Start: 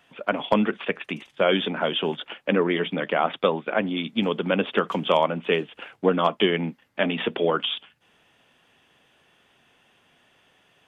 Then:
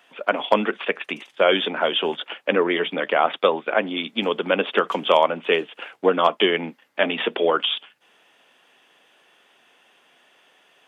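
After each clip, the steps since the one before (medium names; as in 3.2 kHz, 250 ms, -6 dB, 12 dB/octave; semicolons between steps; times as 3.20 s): high-pass 340 Hz 12 dB/octave; trim +4 dB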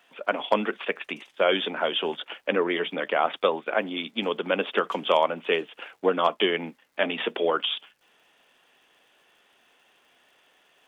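crackle 320 per s -53 dBFS; trim -4.5 dB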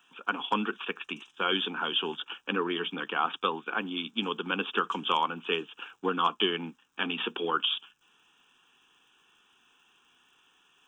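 static phaser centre 3 kHz, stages 8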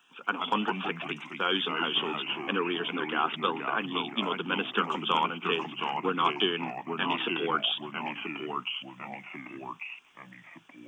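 ever faster or slower copies 94 ms, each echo -2 st, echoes 3, each echo -6 dB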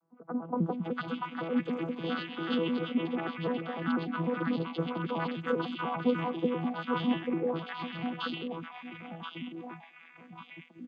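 vocoder on a broken chord bare fifth, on E3, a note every 99 ms; three bands offset in time lows, highs, mids 560/690 ms, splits 950/2900 Hz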